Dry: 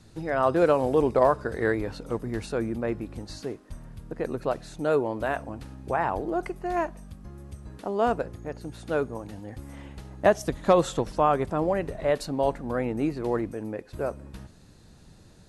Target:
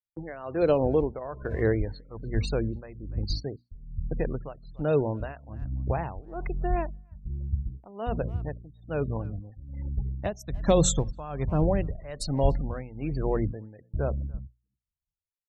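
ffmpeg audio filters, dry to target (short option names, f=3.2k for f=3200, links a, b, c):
-filter_complex "[0:a]afftfilt=real='re*gte(hypot(re,im),0.0158)':imag='im*gte(hypot(re,im),0.0158)':win_size=1024:overlap=0.75,agate=range=-53dB:threshold=-43dB:ratio=16:detection=peak,aemphasis=mode=production:type=75fm,bandreject=f=60:t=h:w=6,bandreject=f=120:t=h:w=6,bandreject=f=180:t=h:w=6,bandreject=f=240:t=h:w=6,asubboost=boost=5.5:cutoff=130,asplit=2[a][b];[b]adelay=290,highpass=300,lowpass=3.4k,asoftclip=type=hard:threshold=-18dB,volume=-27dB[c];[a][c]amix=inputs=2:normalize=0,tremolo=f=1.2:d=0.9,acrossover=split=700|3000[d][e][f];[e]acompressor=threshold=-45dB:ratio=6[g];[d][g][f]amix=inputs=3:normalize=0,volume=4dB"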